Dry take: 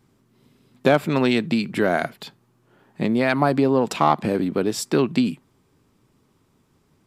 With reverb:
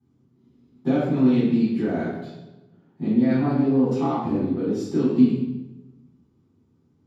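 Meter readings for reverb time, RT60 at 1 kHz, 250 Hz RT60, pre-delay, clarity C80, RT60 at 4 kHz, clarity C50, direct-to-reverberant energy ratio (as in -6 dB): 1.1 s, 0.95 s, 1.3 s, 3 ms, 2.0 dB, 0.75 s, -1.0 dB, -13.0 dB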